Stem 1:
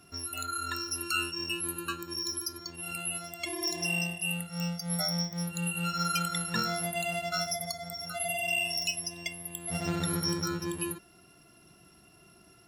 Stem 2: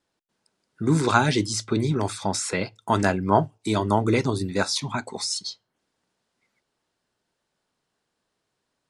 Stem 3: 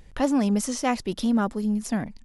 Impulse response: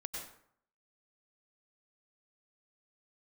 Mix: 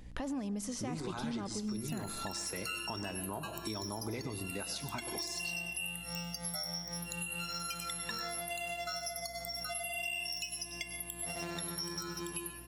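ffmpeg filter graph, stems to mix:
-filter_complex "[0:a]highpass=frequency=510:poles=1,adelay=1550,volume=-1dB,asplit=2[link_01][link_02];[link_02]volume=-4.5dB[link_03];[1:a]volume=-6dB,asplit=2[link_04][link_05];[link_05]volume=-12.5dB[link_06];[2:a]alimiter=limit=-18.5dB:level=0:latency=1:release=26,volume=-4dB,asplit=2[link_07][link_08];[link_08]volume=-12dB[link_09];[link_01][link_04]amix=inputs=2:normalize=0,alimiter=level_in=1dB:limit=-24dB:level=0:latency=1:release=211,volume=-1dB,volume=0dB[link_10];[3:a]atrim=start_sample=2205[link_11];[link_03][link_06][link_09]amix=inputs=3:normalize=0[link_12];[link_12][link_11]afir=irnorm=-1:irlink=0[link_13];[link_07][link_10][link_13]amix=inputs=3:normalize=0,bandreject=frequency=1400:width=15,aeval=exprs='val(0)+0.00251*(sin(2*PI*60*n/s)+sin(2*PI*2*60*n/s)/2+sin(2*PI*3*60*n/s)/3+sin(2*PI*4*60*n/s)/4+sin(2*PI*5*60*n/s)/5)':channel_layout=same,acompressor=threshold=-37dB:ratio=4"

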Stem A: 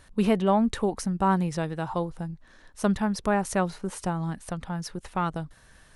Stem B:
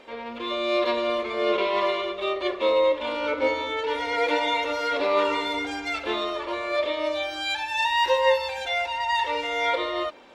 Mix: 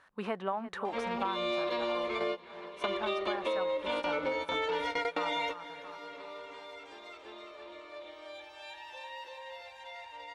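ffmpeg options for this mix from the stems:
ffmpeg -i stem1.wav -i stem2.wav -filter_complex "[0:a]bandpass=frequency=1200:width_type=q:width=1.2:csg=0,volume=0dB,asplit=3[link_01][link_02][link_03];[link_02]volume=-14.5dB[link_04];[1:a]alimiter=limit=-16.5dB:level=0:latency=1:release=111,adelay=850,volume=1.5dB,asplit=2[link_05][link_06];[link_06]volume=-23.5dB[link_07];[link_03]apad=whole_len=493802[link_08];[link_05][link_08]sidechaingate=range=-28dB:threshold=-51dB:ratio=16:detection=peak[link_09];[link_04][link_07]amix=inputs=2:normalize=0,aecho=0:1:338|676|1014|1352|1690|2028|2366:1|0.5|0.25|0.125|0.0625|0.0312|0.0156[link_10];[link_01][link_09][link_10]amix=inputs=3:normalize=0,acompressor=threshold=-29dB:ratio=10" out.wav

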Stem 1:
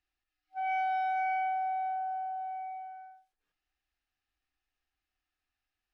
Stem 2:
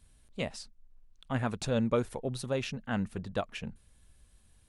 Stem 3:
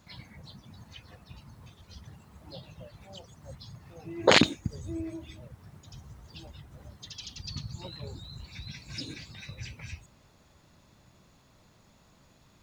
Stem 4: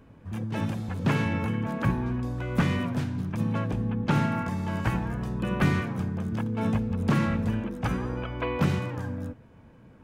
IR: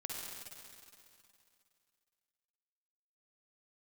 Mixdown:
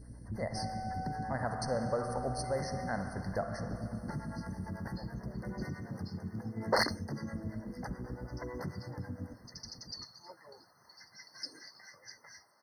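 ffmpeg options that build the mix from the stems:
-filter_complex "[0:a]acompressor=threshold=-40dB:ratio=6,volume=2.5dB[link_01];[1:a]lowshelf=frequency=480:width_type=q:width=1.5:gain=-7.5,aeval=exprs='val(0)+0.00178*(sin(2*PI*60*n/s)+sin(2*PI*2*60*n/s)/2+sin(2*PI*3*60*n/s)/3+sin(2*PI*4*60*n/s)/4+sin(2*PI*5*60*n/s)/5)':channel_layout=same,volume=2dB,asplit=3[link_02][link_03][link_04];[link_03]volume=-7dB[link_05];[2:a]highpass=640,adelay=2450,volume=-1.5dB[link_06];[3:a]acrossover=split=470[link_07][link_08];[link_07]aeval=exprs='val(0)*(1-1/2+1/2*cos(2*PI*9.1*n/s))':channel_layout=same[link_09];[link_08]aeval=exprs='val(0)*(1-1/2-1/2*cos(2*PI*9.1*n/s))':channel_layout=same[link_10];[link_09][link_10]amix=inputs=2:normalize=0,acompressor=threshold=-38dB:ratio=6,volume=0.5dB,asplit=2[link_11][link_12];[link_12]volume=-13.5dB[link_13];[link_04]apad=whole_len=664973[link_14];[link_06][link_14]sidechaincompress=threshold=-42dB:ratio=8:attack=34:release=271[link_15];[link_01][link_02][link_11]amix=inputs=3:normalize=0,equalizer=frequency=1200:width_type=o:width=0.51:gain=-12,alimiter=level_in=2.5dB:limit=-24dB:level=0:latency=1:release=293,volume=-2.5dB,volume=0dB[link_16];[4:a]atrim=start_sample=2205[link_17];[link_05][link_13]amix=inputs=2:normalize=0[link_18];[link_18][link_17]afir=irnorm=-1:irlink=0[link_19];[link_15][link_16][link_19]amix=inputs=3:normalize=0,asoftclip=type=tanh:threshold=-17.5dB,afftfilt=real='re*eq(mod(floor(b*sr/1024/2100),2),0)':imag='im*eq(mod(floor(b*sr/1024/2100),2),0)':win_size=1024:overlap=0.75"

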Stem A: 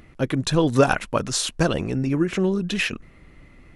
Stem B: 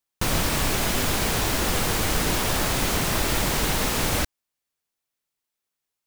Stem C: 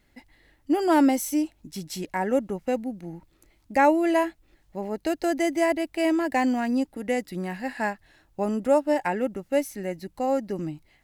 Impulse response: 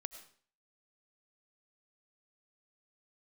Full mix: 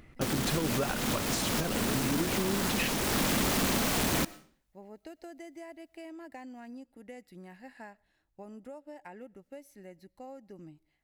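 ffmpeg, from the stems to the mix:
-filter_complex "[0:a]volume=-9dB,asplit=2[link_01][link_02];[link_02]volume=-3.5dB[link_03];[1:a]asoftclip=type=hard:threshold=-20.5dB,aeval=exprs='val(0)*sin(2*PI*230*n/s)':channel_layout=same,volume=-2.5dB,asplit=2[link_04][link_05];[link_05]volume=-4.5dB[link_06];[2:a]acompressor=threshold=-25dB:ratio=12,volume=-18dB,asplit=2[link_07][link_08];[link_08]volume=-13.5dB[link_09];[3:a]atrim=start_sample=2205[link_10];[link_03][link_06][link_09]amix=inputs=3:normalize=0[link_11];[link_11][link_10]afir=irnorm=-1:irlink=0[link_12];[link_01][link_04][link_07][link_12]amix=inputs=4:normalize=0,alimiter=limit=-20dB:level=0:latency=1:release=297"

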